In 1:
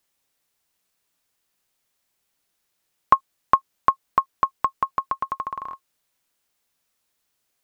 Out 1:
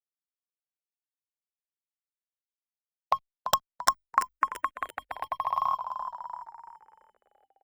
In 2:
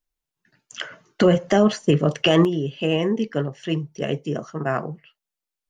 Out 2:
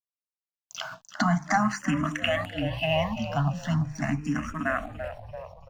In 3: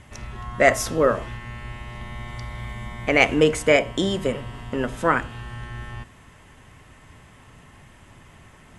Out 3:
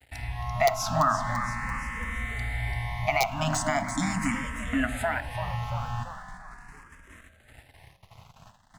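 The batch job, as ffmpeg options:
-filter_complex "[0:a]afftfilt=real='re*(1-between(b*sr/4096,310,620))':imag='im*(1-between(b*sr/4096,310,620))':win_size=4096:overlap=0.75,agate=range=-42dB:threshold=-48dB:ratio=16:detection=peak,bandreject=frequency=50:width_type=h:width=6,bandreject=frequency=100:width_type=h:width=6,bandreject=frequency=150:width_type=h:width=6,bandreject=frequency=200:width_type=h:width=6,bandreject=frequency=250:width_type=h:width=6,bandreject=frequency=300:width_type=h:width=6,bandreject=frequency=350:width_type=h:width=6,bandreject=frequency=400:width_type=h:width=6,bandreject=frequency=450:width_type=h:width=6,adynamicequalizer=threshold=0.02:dfrequency=1200:dqfactor=0.84:tfrequency=1200:tqfactor=0.84:attack=5:release=100:ratio=0.375:range=3:mode=boostabove:tftype=bell,acrossover=split=140[link_01][link_02];[link_02]aeval=exprs='(mod(1.06*val(0)+1,2)-1)/1.06':channel_layout=same[link_03];[link_01][link_03]amix=inputs=2:normalize=0,acompressor=threshold=-24dB:ratio=4,asplit=2[link_04][link_05];[link_05]alimiter=limit=-19.5dB:level=0:latency=1:release=49,volume=0dB[link_06];[link_04][link_06]amix=inputs=2:normalize=0,equalizer=frequency=200:width_type=o:width=0.33:gain=-4,equalizer=frequency=500:width_type=o:width=0.33:gain=3,equalizer=frequency=800:width_type=o:width=0.33:gain=4,equalizer=frequency=2000:width_type=o:width=0.33:gain=3,equalizer=frequency=3150:width_type=o:width=0.33:gain=-7,aeval=exprs='sgn(val(0))*max(abs(val(0))-0.00422,0)':channel_layout=same,asplit=7[link_07][link_08][link_09][link_10][link_11][link_12][link_13];[link_08]adelay=339,afreqshift=-49,volume=-11dB[link_14];[link_09]adelay=678,afreqshift=-98,volume=-16.4dB[link_15];[link_10]adelay=1017,afreqshift=-147,volume=-21.7dB[link_16];[link_11]adelay=1356,afreqshift=-196,volume=-27.1dB[link_17];[link_12]adelay=1695,afreqshift=-245,volume=-32.4dB[link_18];[link_13]adelay=2034,afreqshift=-294,volume=-37.8dB[link_19];[link_07][link_14][link_15][link_16][link_17][link_18][link_19]amix=inputs=7:normalize=0,asplit=2[link_20][link_21];[link_21]afreqshift=0.4[link_22];[link_20][link_22]amix=inputs=2:normalize=1"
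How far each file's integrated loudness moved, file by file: −6.0, −6.5, −7.0 LU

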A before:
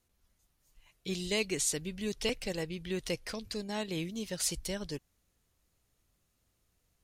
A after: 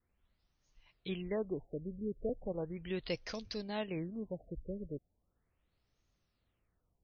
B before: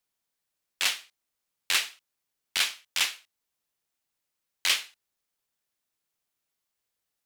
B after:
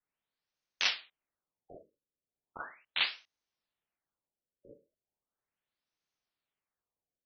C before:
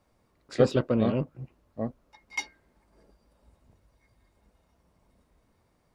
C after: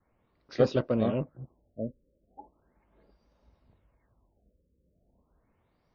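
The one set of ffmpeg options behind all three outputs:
-af "adynamicequalizer=threshold=0.00708:dfrequency=620:dqfactor=3.1:tfrequency=620:tqfactor=3.1:attack=5:release=100:ratio=0.375:range=2:mode=boostabove:tftype=bell,afftfilt=real='re*lt(b*sr/1024,570*pow(6800/570,0.5+0.5*sin(2*PI*0.37*pts/sr)))':imag='im*lt(b*sr/1024,570*pow(6800/570,0.5+0.5*sin(2*PI*0.37*pts/sr)))':win_size=1024:overlap=0.75,volume=-3dB"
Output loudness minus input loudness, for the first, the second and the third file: −6.0, −6.0, −1.5 LU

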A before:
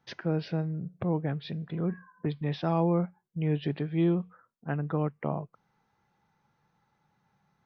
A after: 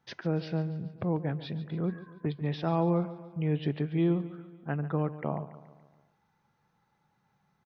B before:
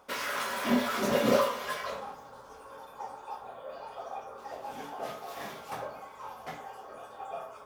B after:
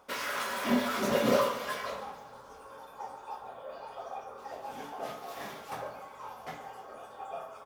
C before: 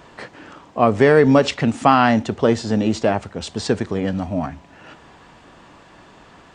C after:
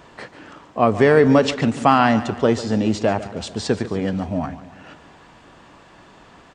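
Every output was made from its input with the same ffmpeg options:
-af "aecho=1:1:142|284|426|568|710:0.178|0.0942|0.05|0.0265|0.014,volume=-1dB"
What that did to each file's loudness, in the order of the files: −1.0, −1.0, −0.5 LU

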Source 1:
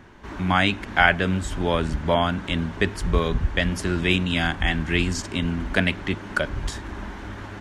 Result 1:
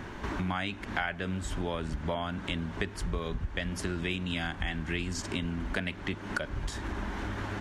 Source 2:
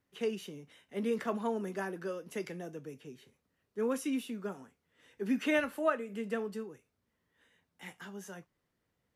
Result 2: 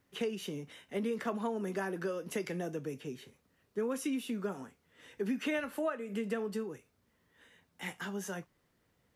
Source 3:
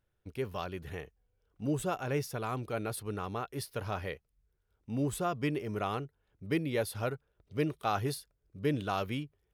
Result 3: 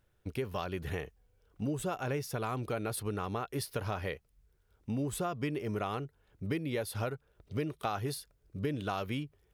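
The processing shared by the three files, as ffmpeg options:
-af "acompressor=threshold=-39dB:ratio=5,volume=7dB"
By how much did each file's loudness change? −11.0, −1.5, −1.0 LU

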